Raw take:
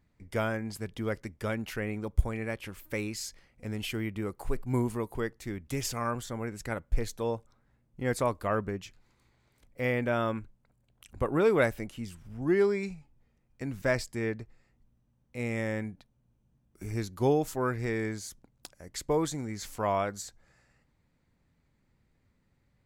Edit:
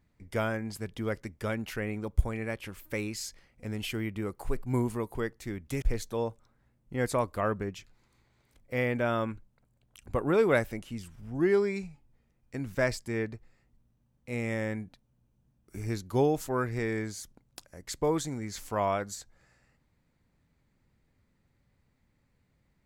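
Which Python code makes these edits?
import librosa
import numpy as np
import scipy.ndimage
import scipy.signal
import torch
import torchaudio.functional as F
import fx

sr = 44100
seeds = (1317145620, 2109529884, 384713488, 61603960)

y = fx.edit(x, sr, fx.cut(start_s=5.82, length_s=1.07), tone=tone)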